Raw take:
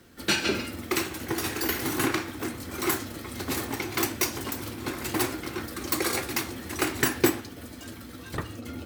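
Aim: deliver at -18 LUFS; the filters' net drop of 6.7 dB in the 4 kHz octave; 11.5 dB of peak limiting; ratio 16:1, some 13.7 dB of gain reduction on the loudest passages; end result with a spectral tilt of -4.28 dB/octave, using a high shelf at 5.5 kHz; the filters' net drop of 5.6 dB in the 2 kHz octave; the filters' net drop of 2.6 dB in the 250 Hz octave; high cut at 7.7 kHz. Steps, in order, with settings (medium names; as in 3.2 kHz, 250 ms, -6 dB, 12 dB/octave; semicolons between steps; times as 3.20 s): low-pass 7.7 kHz; peaking EQ 250 Hz -3.5 dB; peaking EQ 2 kHz -5.5 dB; peaking EQ 4 kHz -9 dB; treble shelf 5.5 kHz +5 dB; compression 16:1, threshold -33 dBFS; trim +23 dB; peak limiter -7.5 dBFS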